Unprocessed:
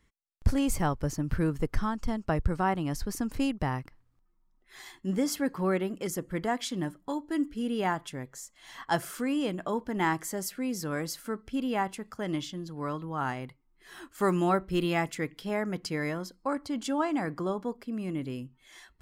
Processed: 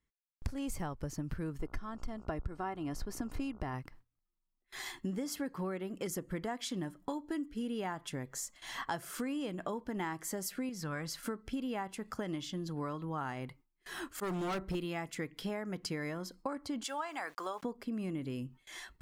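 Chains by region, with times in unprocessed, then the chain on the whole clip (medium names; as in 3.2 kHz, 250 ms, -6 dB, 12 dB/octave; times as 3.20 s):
1.59–3.73 s: treble shelf 4.8 kHz -5.5 dB + comb 2.9 ms, depth 43% + mains buzz 60 Hz, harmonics 24, -51 dBFS
10.69–11.23 s: low-pass 3.2 kHz 6 dB/octave + peaking EQ 380 Hz -9.5 dB 1.6 oct
14.02–14.75 s: slow attack 127 ms + hard clipper -30 dBFS
16.84–17.63 s: high-pass 850 Hz + small samples zeroed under -58 dBFS
whole clip: gate with hold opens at -46 dBFS; compression 10:1, threshold -39 dBFS; trim +4.5 dB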